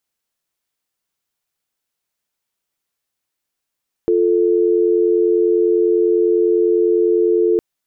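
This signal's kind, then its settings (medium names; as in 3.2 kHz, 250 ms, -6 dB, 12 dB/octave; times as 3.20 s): call progress tone dial tone, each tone -14.5 dBFS 3.51 s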